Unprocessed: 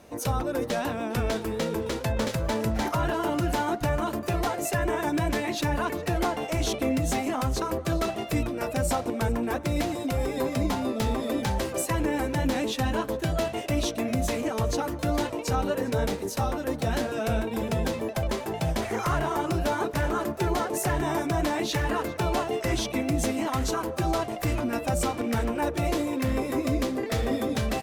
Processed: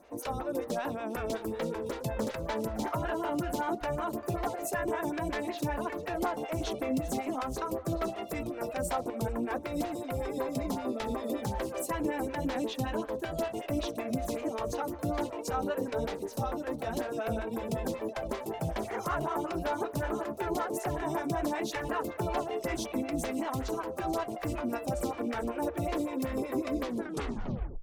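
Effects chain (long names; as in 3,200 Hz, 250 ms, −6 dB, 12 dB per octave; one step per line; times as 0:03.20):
turntable brake at the end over 0.97 s
phaser with staggered stages 5.3 Hz
level −3 dB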